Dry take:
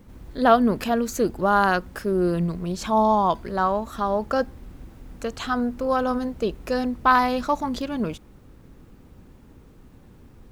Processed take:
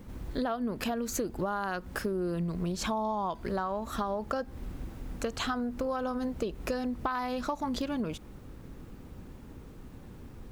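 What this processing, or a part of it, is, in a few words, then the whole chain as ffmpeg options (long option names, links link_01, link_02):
serial compression, leveller first: -af "acompressor=threshold=-23dB:ratio=2.5,acompressor=threshold=-31dB:ratio=6,volume=2dB"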